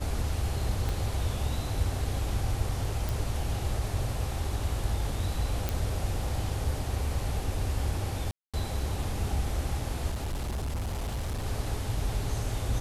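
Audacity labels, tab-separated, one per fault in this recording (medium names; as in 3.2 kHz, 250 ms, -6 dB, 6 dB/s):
0.890000	0.890000	pop
3.090000	3.090000	pop
5.690000	5.690000	pop
8.310000	8.540000	dropout 226 ms
10.100000	11.460000	clipped -28.5 dBFS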